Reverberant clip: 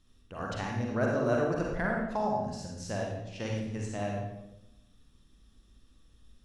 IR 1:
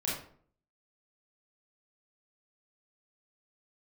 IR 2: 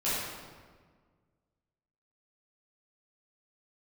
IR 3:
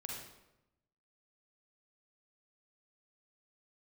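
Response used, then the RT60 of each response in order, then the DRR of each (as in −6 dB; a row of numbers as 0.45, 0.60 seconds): 3; 0.55, 1.6, 0.90 seconds; −6.5, −12.0, −2.0 decibels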